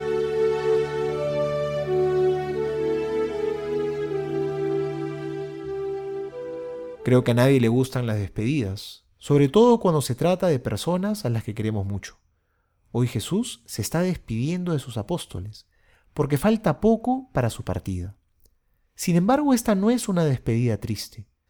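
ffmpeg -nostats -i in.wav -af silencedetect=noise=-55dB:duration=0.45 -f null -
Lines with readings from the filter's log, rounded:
silence_start: 12.26
silence_end: 12.86 | silence_duration: 0.60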